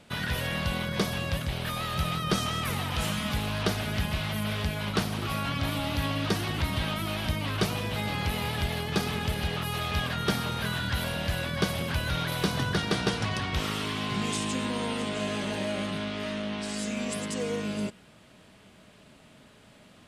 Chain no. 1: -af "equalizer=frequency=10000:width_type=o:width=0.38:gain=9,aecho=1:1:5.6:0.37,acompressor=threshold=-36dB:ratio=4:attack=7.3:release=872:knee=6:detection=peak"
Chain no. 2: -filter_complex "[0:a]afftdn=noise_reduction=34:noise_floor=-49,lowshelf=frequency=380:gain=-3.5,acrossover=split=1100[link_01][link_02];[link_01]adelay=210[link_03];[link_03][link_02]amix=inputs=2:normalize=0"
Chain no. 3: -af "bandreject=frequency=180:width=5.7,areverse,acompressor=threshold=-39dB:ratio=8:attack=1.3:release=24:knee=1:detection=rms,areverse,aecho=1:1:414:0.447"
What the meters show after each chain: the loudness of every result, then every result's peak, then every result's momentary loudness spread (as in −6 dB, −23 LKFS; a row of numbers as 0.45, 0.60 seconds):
−39.5, −32.0, −41.0 LKFS; −19.5, −15.5, −30.0 dBFS; 3, 3, 2 LU